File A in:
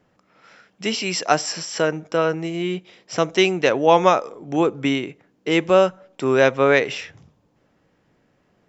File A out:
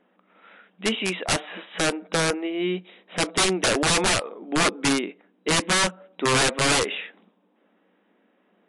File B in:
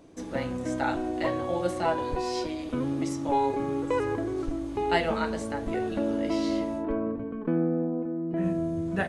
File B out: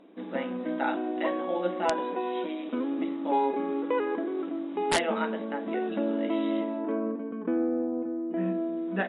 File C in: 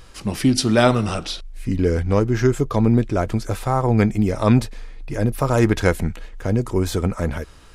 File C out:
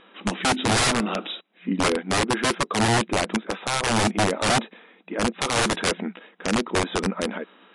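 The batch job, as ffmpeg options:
ffmpeg -i in.wav -af "afftfilt=real='re*between(b*sr/4096,180,3900)':imag='im*between(b*sr/4096,180,3900)':win_size=4096:overlap=0.75,aeval=exprs='(mod(5.31*val(0)+1,2)-1)/5.31':channel_layout=same" -ar 24000 -c:a libmp3lame -b:a 56k out.mp3

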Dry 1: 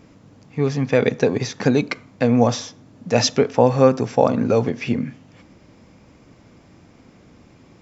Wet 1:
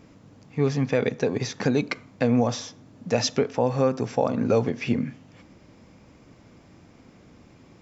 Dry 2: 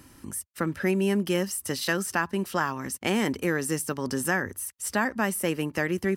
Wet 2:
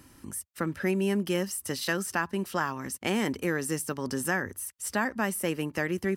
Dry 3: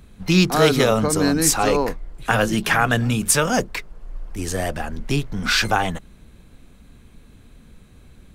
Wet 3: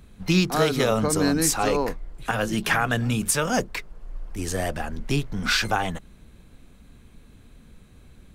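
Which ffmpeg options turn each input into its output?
ffmpeg -i in.wav -af "alimiter=limit=-7.5dB:level=0:latency=1:release=306,volume=-2.5dB" out.wav

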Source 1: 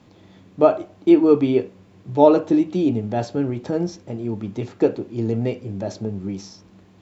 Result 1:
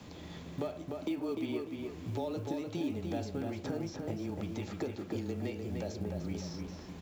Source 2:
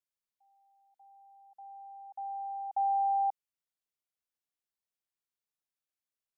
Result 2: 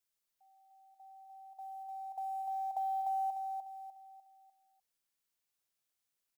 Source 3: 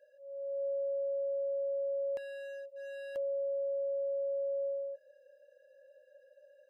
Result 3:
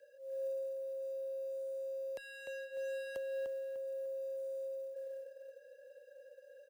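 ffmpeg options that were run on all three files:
ffmpeg -i in.wav -filter_complex "[0:a]acompressor=threshold=-35dB:ratio=2,afreqshift=-18,highshelf=frequency=3300:gain=6,acrossover=split=700|3000[link_01][link_02][link_03];[link_01]acompressor=threshold=-39dB:ratio=4[link_04];[link_02]acompressor=threshold=-50dB:ratio=4[link_05];[link_03]acompressor=threshold=-56dB:ratio=4[link_06];[link_04][link_05][link_06]amix=inputs=3:normalize=0,asplit=2[link_07][link_08];[link_08]adelay=299,lowpass=frequency=3300:poles=1,volume=-4dB,asplit=2[link_09][link_10];[link_10]adelay=299,lowpass=frequency=3300:poles=1,volume=0.4,asplit=2[link_11][link_12];[link_12]adelay=299,lowpass=frequency=3300:poles=1,volume=0.4,asplit=2[link_13][link_14];[link_14]adelay=299,lowpass=frequency=3300:poles=1,volume=0.4,asplit=2[link_15][link_16];[link_16]adelay=299,lowpass=frequency=3300:poles=1,volume=0.4[link_17];[link_09][link_11][link_13][link_15][link_17]amix=inputs=5:normalize=0[link_18];[link_07][link_18]amix=inputs=2:normalize=0,acrusher=bits=8:mode=log:mix=0:aa=0.000001,volume=2dB" out.wav

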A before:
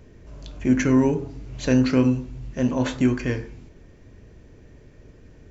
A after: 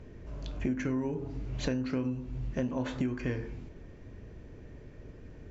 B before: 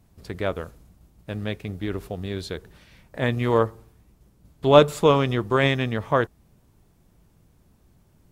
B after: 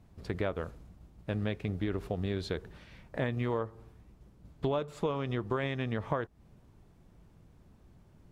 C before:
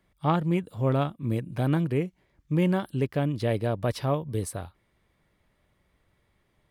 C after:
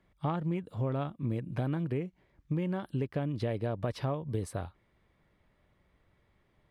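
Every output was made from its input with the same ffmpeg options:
ffmpeg -i in.wav -af "aemphasis=mode=reproduction:type=50kf,acompressor=threshold=-28dB:ratio=16" out.wav

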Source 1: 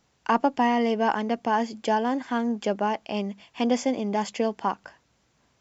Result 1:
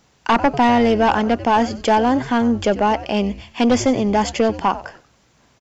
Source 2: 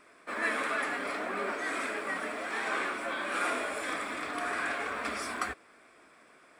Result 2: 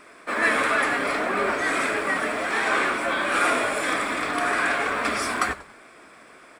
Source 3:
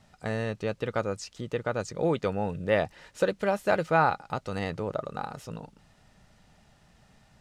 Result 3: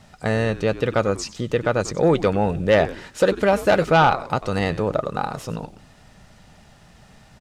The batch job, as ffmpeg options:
ffmpeg -i in.wav -filter_complex "[0:a]asplit=4[link_01][link_02][link_03][link_04];[link_02]adelay=94,afreqshift=-140,volume=-16.5dB[link_05];[link_03]adelay=188,afreqshift=-280,volume=-26.4dB[link_06];[link_04]adelay=282,afreqshift=-420,volume=-36.3dB[link_07];[link_01][link_05][link_06][link_07]amix=inputs=4:normalize=0,aeval=exprs='0.376*sin(PI/2*2*val(0)/0.376)':channel_layout=same" out.wav

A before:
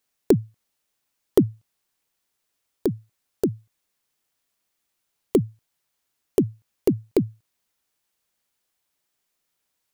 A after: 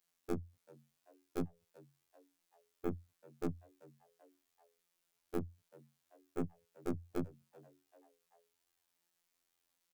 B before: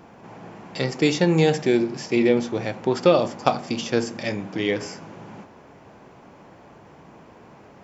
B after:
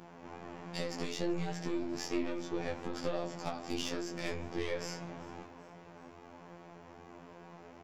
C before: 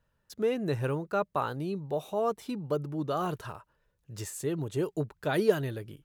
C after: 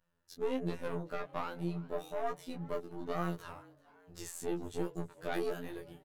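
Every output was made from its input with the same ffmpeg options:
ffmpeg -i in.wav -filter_complex "[0:a]acompressor=threshold=-24dB:ratio=20,aeval=exprs='(tanh(22.4*val(0)+0.5)-tanh(0.5))/22.4':channel_layout=same,afftfilt=real='hypot(re,im)*cos(PI*b)':imag='0':win_size=2048:overlap=0.75,flanger=delay=17:depth=3.8:speed=1.2,asplit=4[link_01][link_02][link_03][link_04];[link_02]adelay=386,afreqshift=140,volume=-23dB[link_05];[link_03]adelay=772,afreqshift=280,volume=-28.7dB[link_06];[link_04]adelay=1158,afreqshift=420,volume=-34.4dB[link_07];[link_01][link_05][link_06][link_07]amix=inputs=4:normalize=0,volume=3.5dB" out.wav

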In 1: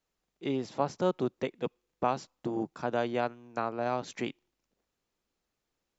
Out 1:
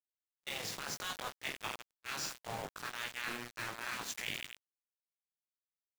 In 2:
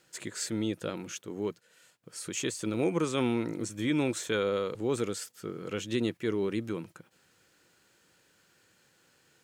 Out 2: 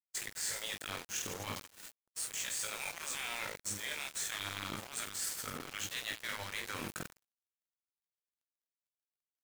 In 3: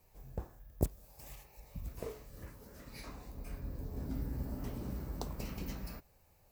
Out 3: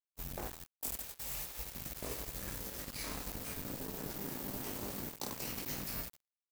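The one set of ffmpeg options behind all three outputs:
ffmpeg -i in.wav -filter_complex "[0:a]afftfilt=real='re*lt(hypot(re,im),0.0562)':imag='im*lt(hypot(re,im),0.0562)':win_size=1024:overlap=0.75,highshelf=frequency=4500:gain=10.5,asplit=2[link_01][link_02];[link_02]aecho=0:1:20|50|95|162.5|263.8:0.631|0.398|0.251|0.158|0.1[link_03];[link_01][link_03]amix=inputs=2:normalize=0,adynamicequalizer=threshold=0.002:dfrequency=1800:dqfactor=2.4:tfrequency=1800:tqfactor=2.4:attack=5:release=100:ratio=0.375:range=3.5:mode=boostabove:tftype=bell,areverse,acompressor=threshold=-47dB:ratio=6,areverse,aeval=exprs='val(0)*gte(abs(val(0)),0.00376)':channel_layout=same,agate=range=-33dB:threshold=-54dB:ratio=3:detection=peak,volume=10dB" out.wav

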